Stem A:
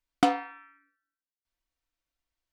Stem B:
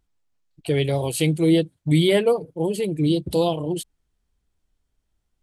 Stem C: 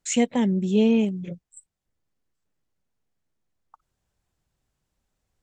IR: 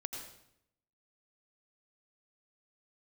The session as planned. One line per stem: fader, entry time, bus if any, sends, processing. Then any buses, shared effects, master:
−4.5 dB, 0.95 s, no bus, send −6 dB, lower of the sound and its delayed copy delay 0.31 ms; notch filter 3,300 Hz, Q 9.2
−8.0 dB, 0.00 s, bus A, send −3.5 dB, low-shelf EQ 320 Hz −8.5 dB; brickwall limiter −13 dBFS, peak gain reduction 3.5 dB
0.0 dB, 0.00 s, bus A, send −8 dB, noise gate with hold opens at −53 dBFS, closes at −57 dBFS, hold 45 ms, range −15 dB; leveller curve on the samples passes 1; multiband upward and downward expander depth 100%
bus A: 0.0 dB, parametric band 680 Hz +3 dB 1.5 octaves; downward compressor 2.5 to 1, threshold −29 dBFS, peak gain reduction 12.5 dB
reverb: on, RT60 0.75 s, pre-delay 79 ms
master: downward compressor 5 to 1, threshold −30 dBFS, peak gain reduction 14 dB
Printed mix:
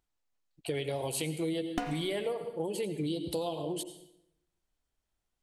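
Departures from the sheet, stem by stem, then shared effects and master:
stem A: entry 0.95 s → 1.55 s
stem C: muted

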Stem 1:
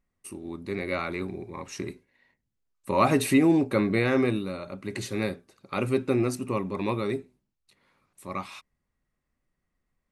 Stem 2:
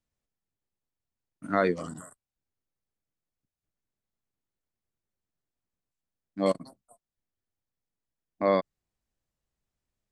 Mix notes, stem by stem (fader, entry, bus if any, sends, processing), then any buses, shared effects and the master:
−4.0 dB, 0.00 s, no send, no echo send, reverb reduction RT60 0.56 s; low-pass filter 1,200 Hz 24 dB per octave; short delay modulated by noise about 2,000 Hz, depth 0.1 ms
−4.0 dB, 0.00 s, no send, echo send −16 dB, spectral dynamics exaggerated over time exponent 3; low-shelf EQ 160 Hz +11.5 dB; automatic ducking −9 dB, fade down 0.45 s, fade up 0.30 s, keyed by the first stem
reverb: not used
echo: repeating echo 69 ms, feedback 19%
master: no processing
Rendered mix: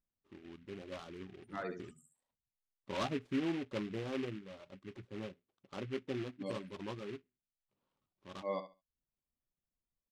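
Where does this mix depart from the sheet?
stem 1 −4.0 dB → −14.0 dB
stem 2: missing low-shelf EQ 160 Hz +11.5 dB

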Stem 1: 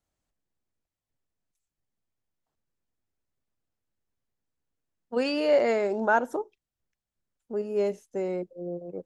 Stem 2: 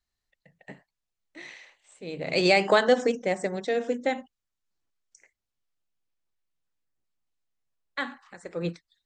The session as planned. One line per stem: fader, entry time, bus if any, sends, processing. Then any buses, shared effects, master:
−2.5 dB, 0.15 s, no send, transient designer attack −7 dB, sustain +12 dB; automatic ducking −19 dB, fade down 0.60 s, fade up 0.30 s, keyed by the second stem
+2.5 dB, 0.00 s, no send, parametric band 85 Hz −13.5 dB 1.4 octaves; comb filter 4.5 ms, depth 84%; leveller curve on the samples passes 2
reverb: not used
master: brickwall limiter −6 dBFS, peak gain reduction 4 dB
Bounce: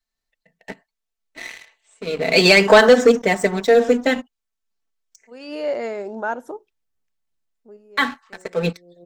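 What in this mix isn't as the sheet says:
stem 1: missing transient designer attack −7 dB, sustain +12 dB
master: missing brickwall limiter −6 dBFS, peak gain reduction 4 dB

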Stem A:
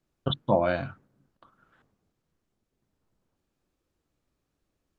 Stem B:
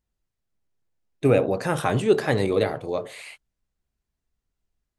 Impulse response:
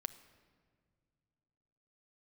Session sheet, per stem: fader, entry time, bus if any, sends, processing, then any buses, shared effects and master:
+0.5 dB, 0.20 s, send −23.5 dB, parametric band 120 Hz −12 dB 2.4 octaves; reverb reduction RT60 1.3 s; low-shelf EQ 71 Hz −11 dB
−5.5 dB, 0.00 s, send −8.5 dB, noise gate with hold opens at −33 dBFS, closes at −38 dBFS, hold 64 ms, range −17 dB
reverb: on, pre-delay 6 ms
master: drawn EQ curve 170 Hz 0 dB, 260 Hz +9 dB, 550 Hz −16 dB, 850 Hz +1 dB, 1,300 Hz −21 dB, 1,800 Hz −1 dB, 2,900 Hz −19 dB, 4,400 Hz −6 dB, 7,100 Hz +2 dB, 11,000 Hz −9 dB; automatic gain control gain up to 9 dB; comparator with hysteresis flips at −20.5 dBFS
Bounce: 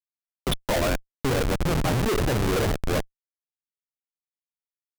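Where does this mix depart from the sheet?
stem A +0.5 dB → +10.5 dB
master: missing drawn EQ curve 170 Hz 0 dB, 260 Hz +9 dB, 550 Hz −16 dB, 850 Hz +1 dB, 1,300 Hz −21 dB, 1,800 Hz −1 dB, 2,900 Hz −19 dB, 4,400 Hz −6 dB, 7,100 Hz +2 dB, 11,000 Hz −9 dB

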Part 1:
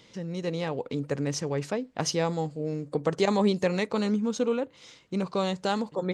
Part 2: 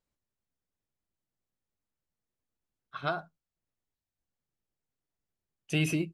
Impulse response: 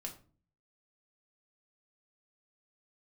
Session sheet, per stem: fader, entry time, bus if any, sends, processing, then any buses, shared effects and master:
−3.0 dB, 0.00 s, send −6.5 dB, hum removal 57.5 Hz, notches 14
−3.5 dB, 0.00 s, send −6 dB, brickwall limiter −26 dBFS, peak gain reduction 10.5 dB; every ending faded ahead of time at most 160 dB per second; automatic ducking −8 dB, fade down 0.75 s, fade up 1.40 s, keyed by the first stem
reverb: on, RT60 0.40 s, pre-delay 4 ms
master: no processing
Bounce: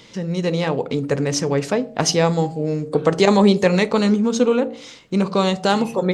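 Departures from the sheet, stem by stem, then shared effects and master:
stem 1 −3.0 dB → +8.0 dB
stem 2 −3.5 dB → +2.5 dB

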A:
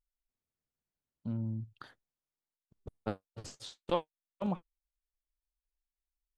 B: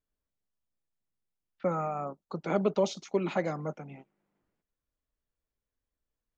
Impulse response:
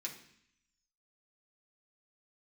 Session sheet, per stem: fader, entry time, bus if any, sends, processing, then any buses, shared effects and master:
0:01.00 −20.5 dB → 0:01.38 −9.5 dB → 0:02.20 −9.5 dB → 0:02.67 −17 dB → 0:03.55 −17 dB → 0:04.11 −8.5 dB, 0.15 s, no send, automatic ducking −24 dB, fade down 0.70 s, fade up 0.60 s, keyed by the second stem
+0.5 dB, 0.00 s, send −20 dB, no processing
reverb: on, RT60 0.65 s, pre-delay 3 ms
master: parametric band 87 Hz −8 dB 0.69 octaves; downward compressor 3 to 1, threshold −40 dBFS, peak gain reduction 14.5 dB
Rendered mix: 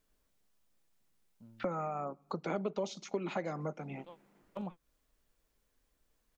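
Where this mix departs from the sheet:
stem A −20.5 dB → −10.5 dB
stem B +0.5 dB → +12.0 dB

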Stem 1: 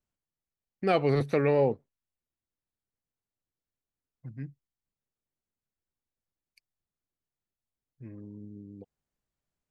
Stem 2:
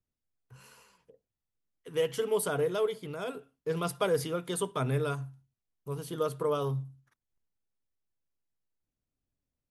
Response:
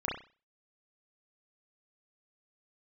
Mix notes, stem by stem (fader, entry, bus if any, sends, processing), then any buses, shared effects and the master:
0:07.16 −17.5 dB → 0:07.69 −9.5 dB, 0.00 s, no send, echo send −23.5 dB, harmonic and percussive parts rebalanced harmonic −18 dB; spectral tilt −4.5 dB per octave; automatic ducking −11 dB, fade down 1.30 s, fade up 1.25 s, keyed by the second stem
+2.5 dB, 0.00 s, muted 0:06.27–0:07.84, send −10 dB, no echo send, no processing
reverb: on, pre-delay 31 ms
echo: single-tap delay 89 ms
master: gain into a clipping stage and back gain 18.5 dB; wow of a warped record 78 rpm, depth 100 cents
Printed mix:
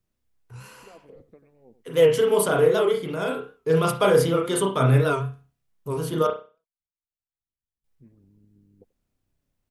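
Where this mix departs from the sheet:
stem 2: send −10 dB → −1.5 dB
master: missing gain into a clipping stage and back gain 18.5 dB

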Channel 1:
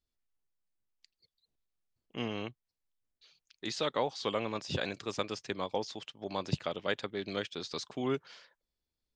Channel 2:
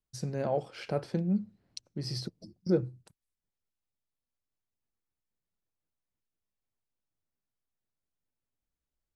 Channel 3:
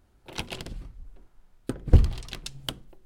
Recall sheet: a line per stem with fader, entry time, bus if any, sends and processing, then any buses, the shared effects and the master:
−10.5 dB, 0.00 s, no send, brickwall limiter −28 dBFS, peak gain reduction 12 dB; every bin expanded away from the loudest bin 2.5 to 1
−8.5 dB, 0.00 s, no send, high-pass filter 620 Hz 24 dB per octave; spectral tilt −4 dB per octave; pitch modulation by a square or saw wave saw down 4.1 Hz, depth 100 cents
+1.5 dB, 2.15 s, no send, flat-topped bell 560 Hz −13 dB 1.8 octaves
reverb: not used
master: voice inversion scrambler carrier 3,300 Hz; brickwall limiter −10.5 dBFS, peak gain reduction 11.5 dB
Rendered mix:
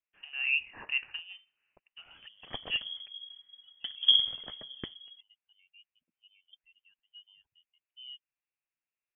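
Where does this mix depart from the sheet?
stem 2 −8.5 dB → +3.0 dB
stem 3 +1.5 dB → −5.5 dB

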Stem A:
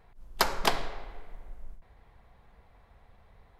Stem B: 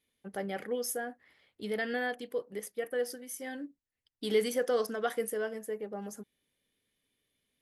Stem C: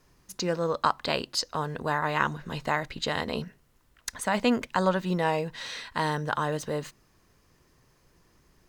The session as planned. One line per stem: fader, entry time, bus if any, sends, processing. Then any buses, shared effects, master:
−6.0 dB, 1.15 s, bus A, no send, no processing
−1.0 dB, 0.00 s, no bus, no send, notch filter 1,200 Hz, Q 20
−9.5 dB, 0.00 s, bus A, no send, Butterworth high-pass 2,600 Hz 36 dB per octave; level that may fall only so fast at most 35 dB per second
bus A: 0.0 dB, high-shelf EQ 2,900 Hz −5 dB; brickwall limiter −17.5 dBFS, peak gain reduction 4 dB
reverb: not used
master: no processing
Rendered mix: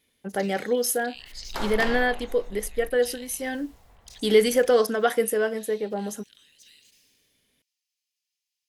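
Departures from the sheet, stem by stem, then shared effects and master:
stem A −6.0 dB → +3.0 dB
stem B −1.0 dB → +10.0 dB

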